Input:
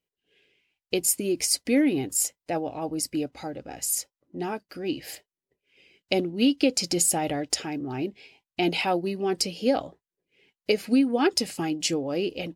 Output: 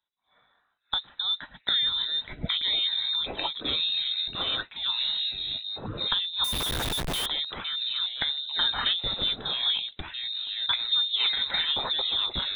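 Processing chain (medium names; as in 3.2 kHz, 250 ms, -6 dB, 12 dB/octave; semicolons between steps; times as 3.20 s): ever faster or slower copies 507 ms, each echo -4 st, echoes 3; frequency inversion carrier 3.9 kHz; compression 2:1, threshold -26 dBFS, peak gain reduction 6 dB; 6.44–7.26 s: Schmitt trigger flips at -35 dBFS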